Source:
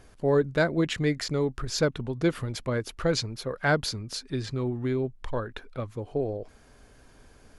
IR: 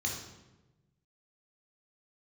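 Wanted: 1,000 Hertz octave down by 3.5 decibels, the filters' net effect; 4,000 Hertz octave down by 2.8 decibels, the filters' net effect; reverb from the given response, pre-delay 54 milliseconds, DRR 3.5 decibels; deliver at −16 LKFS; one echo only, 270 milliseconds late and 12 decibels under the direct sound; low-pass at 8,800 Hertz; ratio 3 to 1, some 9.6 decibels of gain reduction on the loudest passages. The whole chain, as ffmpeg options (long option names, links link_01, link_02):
-filter_complex "[0:a]lowpass=8800,equalizer=frequency=1000:width_type=o:gain=-5,equalizer=frequency=4000:width_type=o:gain=-3,acompressor=threshold=-33dB:ratio=3,aecho=1:1:270:0.251,asplit=2[link_01][link_02];[1:a]atrim=start_sample=2205,adelay=54[link_03];[link_02][link_03]afir=irnorm=-1:irlink=0,volume=-7.5dB[link_04];[link_01][link_04]amix=inputs=2:normalize=0,volume=17.5dB"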